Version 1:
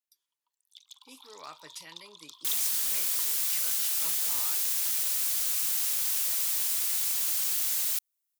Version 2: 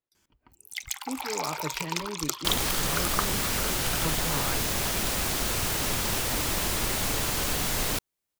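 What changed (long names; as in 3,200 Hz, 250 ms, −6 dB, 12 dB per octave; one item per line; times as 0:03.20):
speech −7.0 dB
first sound: remove pair of resonant band-passes 1,900 Hz, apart 1.8 octaves
master: remove first difference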